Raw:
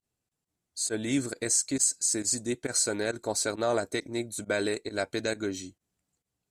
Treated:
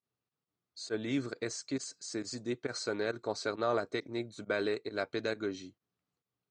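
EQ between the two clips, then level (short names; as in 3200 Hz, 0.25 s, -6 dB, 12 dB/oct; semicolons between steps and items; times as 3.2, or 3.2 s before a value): speaker cabinet 110–5100 Hz, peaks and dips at 120 Hz +4 dB, 430 Hz +4 dB, 1200 Hz +8 dB; -5.5 dB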